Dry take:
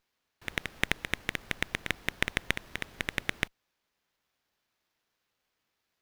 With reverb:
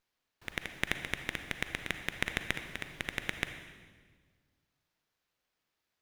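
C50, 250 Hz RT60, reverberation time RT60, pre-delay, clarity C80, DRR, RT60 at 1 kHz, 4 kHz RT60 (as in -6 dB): 8.0 dB, 2.0 s, 1.5 s, 36 ms, 9.5 dB, 7.5 dB, 1.4 s, 1.4 s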